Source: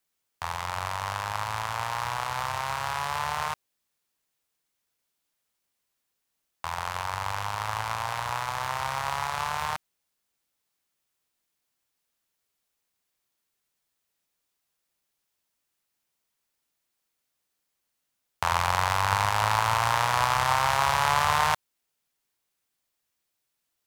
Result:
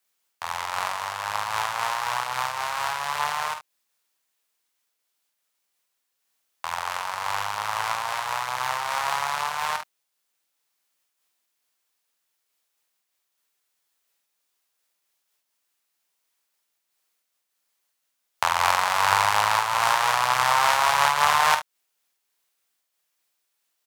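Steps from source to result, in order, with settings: HPF 540 Hz 6 dB/oct; early reflections 48 ms -8 dB, 71 ms -13 dB; noise-modulated level, depth 60%; gain +6.5 dB

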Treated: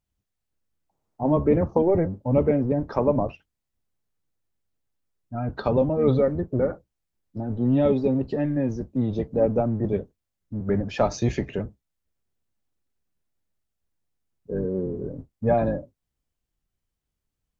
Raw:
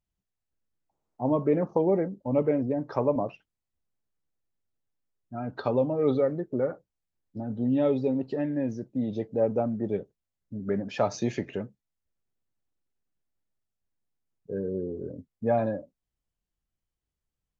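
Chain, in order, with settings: octaver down 1 oct, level -2 dB; gain +3.5 dB

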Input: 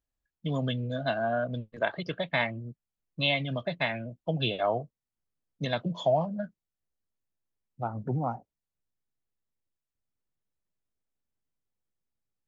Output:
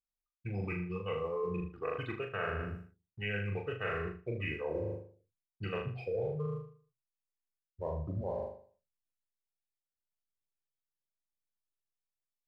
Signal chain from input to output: gate with hold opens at -42 dBFS; bell 350 Hz -7.5 dB 0.26 oct; notches 60/120/180/240/300/360 Hz; pitch shift -5.5 st; in parallel at -11 dB: crossover distortion -50.5 dBFS; on the sum: tremolo 0.78 Hz, depth 31%; flutter echo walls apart 6.7 m, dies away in 0.48 s; reverse; compressor 5:1, threshold -43 dBFS, peak gain reduction 22 dB; reverse; gain +7.5 dB

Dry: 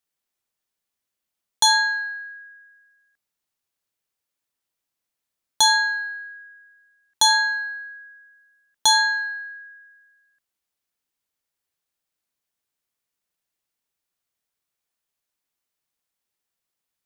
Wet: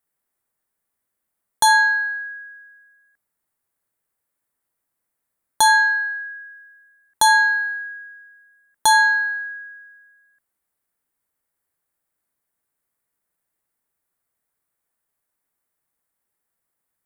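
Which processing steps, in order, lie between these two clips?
band shelf 4100 Hz -10.5 dB; gain +5.5 dB

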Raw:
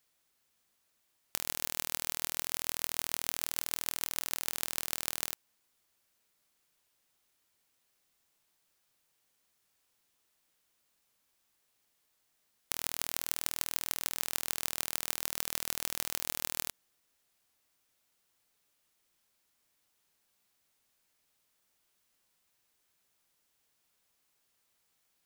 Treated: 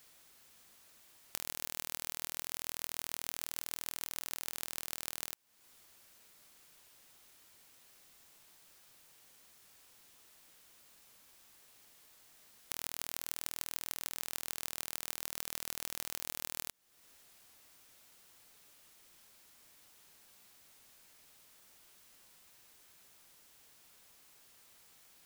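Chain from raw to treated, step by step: compressor 4:1, threshold -50 dBFS, peak gain reduction 20 dB; gain +13.5 dB

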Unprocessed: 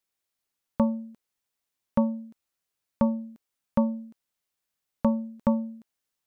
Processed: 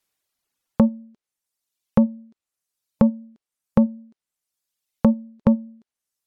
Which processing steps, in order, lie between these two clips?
reverb removal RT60 1.7 s; treble ducked by the level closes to 430 Hz, closed at -25.5 dBFS; gain +8 dB

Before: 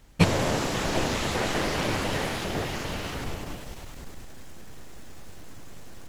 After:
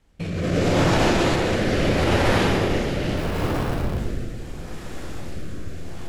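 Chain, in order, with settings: LPF 11000 Hz 12 dB/oct; 3.16–3.98 Schmitt trigger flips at -40 dBFS; reverb RT60 2.0 s, pre-delay 10 ms, DRR -3.5 dB; limiter -13.5 dBFS, peak gain reduction 8 dB; bell 6700 Hz -3 dB 1.6 oct; echo with dull and thin repeats by turns 0.145 s, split 2200 Hz, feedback 60%, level -10 dB; AGC gain up to 13 dB; rotary speaker horn 0.75 Hz; gain -5 dB

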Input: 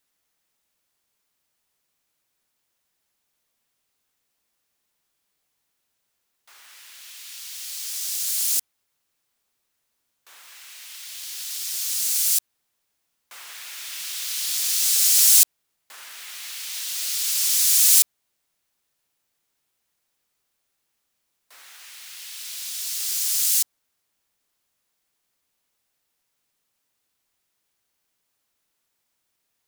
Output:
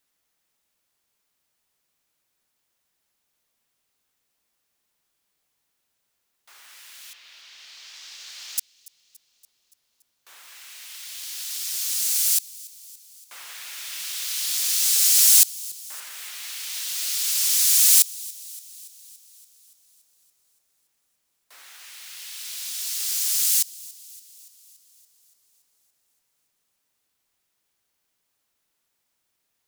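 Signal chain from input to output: 7.13–8.58 air absorption 210 m; on a send: thin delay 0.285 s, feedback 63%, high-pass 2600 Hz, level -21 dB

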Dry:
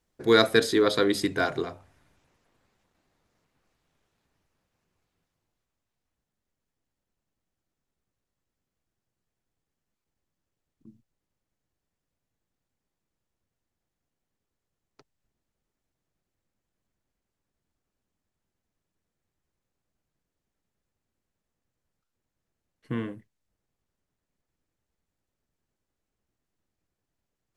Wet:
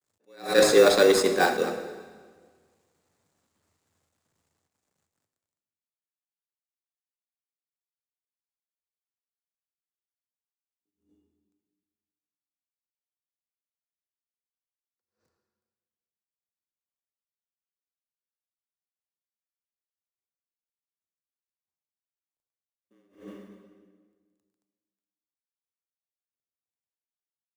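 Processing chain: G.711 law mismatch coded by A; bell 7400 Hz +8.5 dB 0.66 oct; de-hum 137.4 Hz, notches 32; frequency shift +81 Hz; in parallel at -5.5 dB: sample-and-hold 14×; on the sum: reverb RT60 1.6 s, pre-delay 12 ms, DRR 8 dB; attack slew limiter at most 160 dB/s; gain +2.5 dB

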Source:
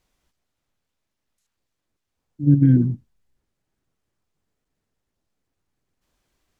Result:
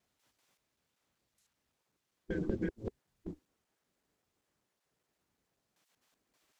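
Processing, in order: slices in reverse order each 0.192 s, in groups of 3; spectral gate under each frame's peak -15 dB weak; gain +1 dB

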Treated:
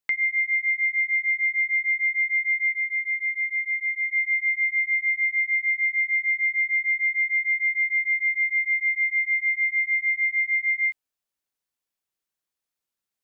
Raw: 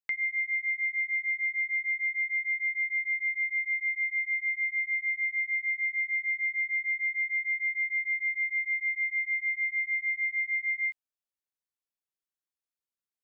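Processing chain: 2.72–4.13 LPF 2100 Hz 12 dB/oct; gain +6.5 dB

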